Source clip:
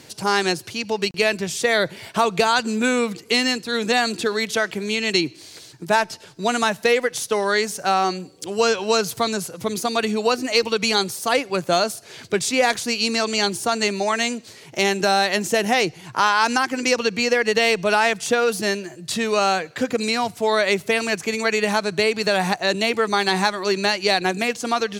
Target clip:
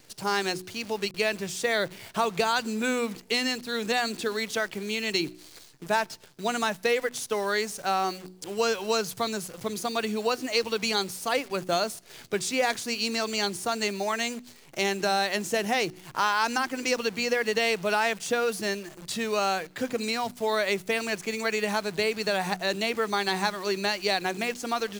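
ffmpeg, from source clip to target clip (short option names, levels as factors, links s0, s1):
-af "acrusher=bits=7:dc=4:mix=0:aa=0.000001,bandreject=f=61.24:t=h:w=4,bandreject=f=122.48:t=h:w=4,bandreject=f=183.72:t=h:w=4,bandreject=f=244.96:t=h:w=4,bandreject=f=306.2:t=h:w=4,bandreject=f=367.44:t=h:w=4,volume=0.447"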